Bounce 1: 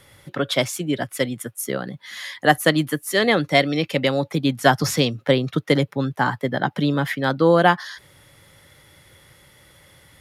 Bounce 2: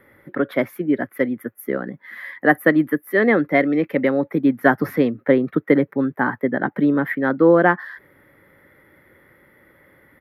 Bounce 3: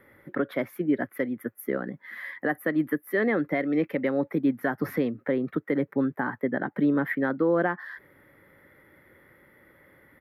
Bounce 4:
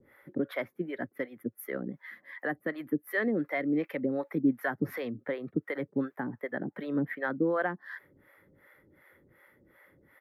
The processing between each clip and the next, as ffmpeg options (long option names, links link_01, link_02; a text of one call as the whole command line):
ffmpeg -i in.wav -af "firequalizer=gain_entry='entry(130,0);entry(230,13);entry(350,13);entry(760,5);entry(1900,11);entry(2800,-8);entry(7700,-27);entry(12000,3)':delay=0.05:min_phase=1,volume=-8dB" out.wav
ffmpeg -i in.wav -af "alimiter=limit=-11.5dB:level=0:latency=1:release=235,volume=-3.5dB" out.wav
ffmpeg -i in.wav -filter_complex "[0:a]acrossover=split=500[link_01][link_02];[link_01]aeval=exprs='val(0)*(1-1/2+1/2*cos(2*PI*2.7*n/s))':channel_layout=same[link_03];[link_02]aeval=exprs='val(0)*(1-1/2-1/2*cos(2*PI*2.7*n/s))':channel_layout=same[link_04];[link_03][link_04]amix=inputs=2:normalize=0" out.wav